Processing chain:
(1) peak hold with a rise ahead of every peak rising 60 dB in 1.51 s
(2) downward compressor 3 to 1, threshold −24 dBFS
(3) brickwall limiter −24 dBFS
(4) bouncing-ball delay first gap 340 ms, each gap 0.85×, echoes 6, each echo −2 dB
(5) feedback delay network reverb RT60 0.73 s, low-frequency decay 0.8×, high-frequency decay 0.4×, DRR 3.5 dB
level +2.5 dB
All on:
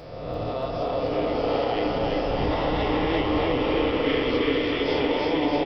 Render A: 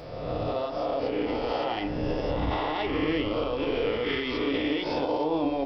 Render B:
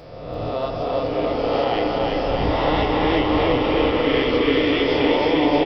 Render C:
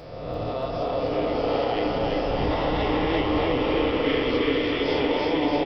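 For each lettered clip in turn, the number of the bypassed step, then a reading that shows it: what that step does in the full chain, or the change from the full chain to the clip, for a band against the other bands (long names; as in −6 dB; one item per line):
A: 4, echo-to-direct ratio 4.5 dB to −3.5 dB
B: 3, average gain reduction 4.0 dB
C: 2, average gain reduction 2.0 dB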